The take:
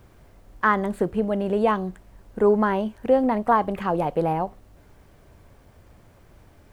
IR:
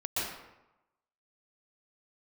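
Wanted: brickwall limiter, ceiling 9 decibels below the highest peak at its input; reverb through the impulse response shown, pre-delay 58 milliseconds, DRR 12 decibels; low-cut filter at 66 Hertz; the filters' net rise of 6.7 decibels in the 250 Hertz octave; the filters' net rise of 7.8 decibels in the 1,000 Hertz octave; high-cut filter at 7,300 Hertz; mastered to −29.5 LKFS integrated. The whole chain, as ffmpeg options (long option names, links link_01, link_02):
-filter_complex "[0:a]highpass=66,lowpass=7300,equalizer=frequency=250:width_type=o:gain=8,equalizer=frequency=1000:width_type=o:gain=9,alimiter=limit=-9.5dB:level=0:latency=1,asplit=2[link_01][link_02];[1:a]atrim=start_sample=2205,adelay=58[link_03];[link_02][link_03]afir=irnorm=-1:irlink=0,volume=-18.5dB[link_04];[link_01][link_04]amix=inputs=2:normalize=0,volume=-9.5dB"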